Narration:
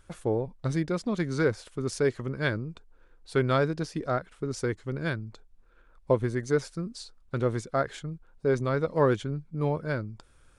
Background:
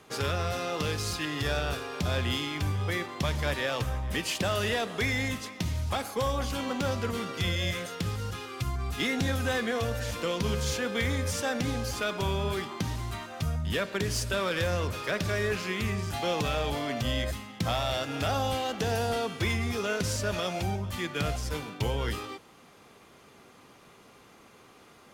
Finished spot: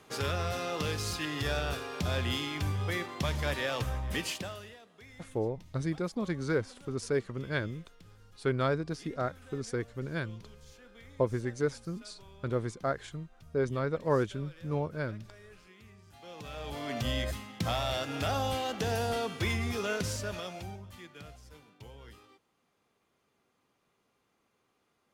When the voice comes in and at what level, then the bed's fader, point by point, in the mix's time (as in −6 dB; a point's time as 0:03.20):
5.10 s, −4.5 dB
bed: 0:04.26 −2.5 dB
0:04.79 −25 dB
0:16.04 −25 dB
0:16.97 −2.5 dB
0:19.96 −2.5 dB
0:21.38 −20.5 dB